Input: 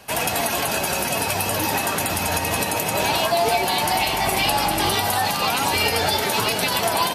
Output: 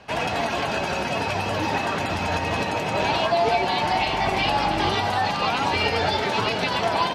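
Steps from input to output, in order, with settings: air absorption 160 m

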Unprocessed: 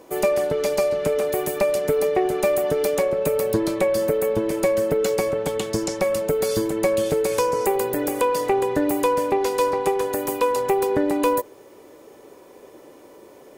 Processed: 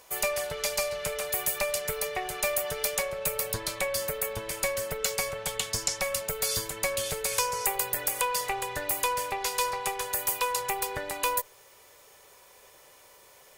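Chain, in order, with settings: passive tone stack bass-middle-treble 10-0-10; gain +4 dB

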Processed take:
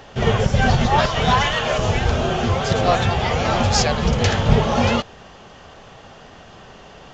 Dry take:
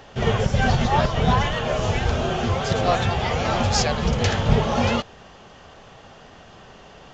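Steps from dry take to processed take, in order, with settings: 0.98–1.78 tilt shelf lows -4.5 dB, about 670 Hz; gain +3 dB

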